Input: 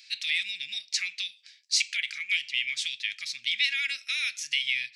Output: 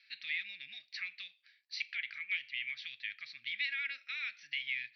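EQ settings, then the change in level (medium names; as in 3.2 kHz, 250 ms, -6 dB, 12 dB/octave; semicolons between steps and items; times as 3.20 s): rippled Chebyshev low-pass 6 kHz, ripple 6 dB; distance through air 400 m; 0.0 dB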